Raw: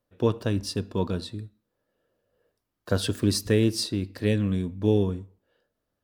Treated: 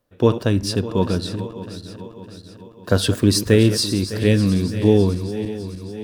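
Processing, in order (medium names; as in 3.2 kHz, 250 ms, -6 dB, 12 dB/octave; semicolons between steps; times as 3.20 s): backward echo that repeats 303 ms, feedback 72%, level -12 dB; trim +7.5 dB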